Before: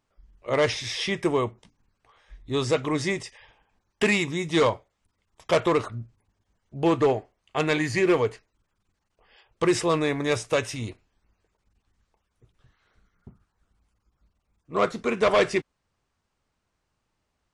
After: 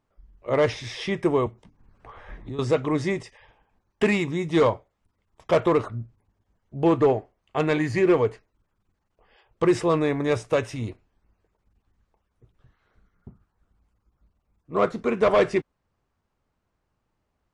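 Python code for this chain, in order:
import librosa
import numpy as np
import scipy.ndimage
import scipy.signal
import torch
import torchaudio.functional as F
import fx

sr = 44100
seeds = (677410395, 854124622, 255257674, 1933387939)

y = fx.high_shelf(x, sr, hz=2100.0, db=-11.0)
y = fx.band_squash(y, sr, depth_pct=100, at=(1.46, 2.59))
y = y * 10.0 ** (2.5 / 20.0)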